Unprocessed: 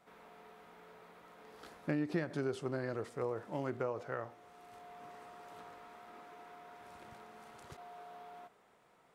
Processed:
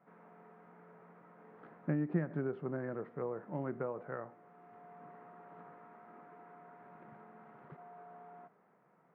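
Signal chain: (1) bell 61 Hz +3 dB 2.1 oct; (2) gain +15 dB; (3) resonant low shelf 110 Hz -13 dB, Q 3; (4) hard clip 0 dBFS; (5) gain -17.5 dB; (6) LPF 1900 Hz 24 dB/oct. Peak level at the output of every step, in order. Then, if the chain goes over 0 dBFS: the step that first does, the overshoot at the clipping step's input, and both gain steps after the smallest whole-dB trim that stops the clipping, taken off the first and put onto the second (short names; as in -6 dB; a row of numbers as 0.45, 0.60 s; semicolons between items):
-20.5, -5.5, -3.0, -3.0, -20.5, -20.5 dBFS; no overload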